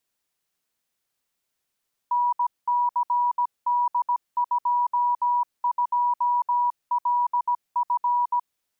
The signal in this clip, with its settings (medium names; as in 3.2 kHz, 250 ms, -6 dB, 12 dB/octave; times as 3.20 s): Morse "NCD22LF" 17 wpm 971 Hz -19 dBFS